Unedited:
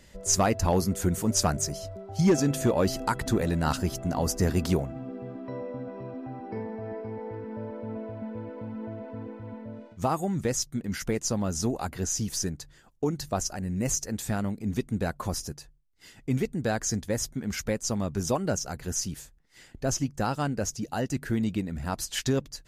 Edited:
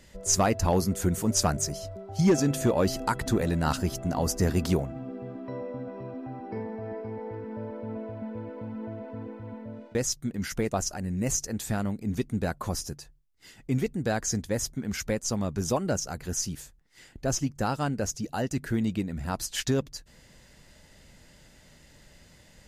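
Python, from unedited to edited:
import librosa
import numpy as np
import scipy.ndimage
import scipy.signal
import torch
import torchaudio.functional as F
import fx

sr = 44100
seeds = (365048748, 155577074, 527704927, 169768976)

y = fx.edit(x, sr, fx.cut(start_s=9.95, length_s=0.5),
    fx.cut(start_s=11.22, length_s=2.09), tone=tone)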